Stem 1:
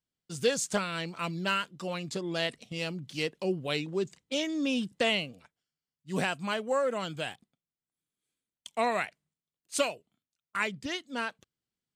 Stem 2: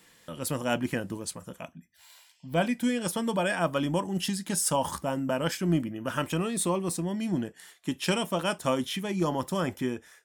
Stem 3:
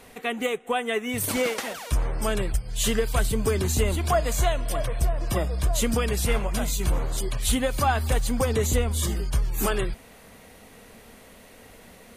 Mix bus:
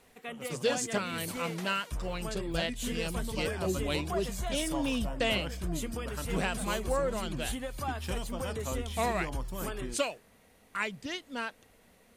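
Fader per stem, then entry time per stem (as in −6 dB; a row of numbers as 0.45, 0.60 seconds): −2.5, −12.0, −13.0 decibels; 0.20, 0.00, 0.00 seconds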